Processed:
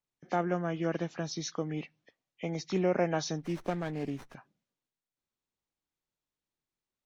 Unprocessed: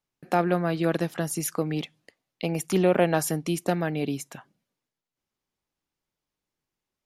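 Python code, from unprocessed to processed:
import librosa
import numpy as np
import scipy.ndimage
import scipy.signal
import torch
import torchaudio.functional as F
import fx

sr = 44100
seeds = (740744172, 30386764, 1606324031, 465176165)

y = fx.freq_compress(x, sr, knee_hz=1700.0, ratio=1.5)
y = fx.running_max(y, sr, window=9, at=(3.38, 4.35))
y = y * 10.0 ** (-7.0 / 20.0)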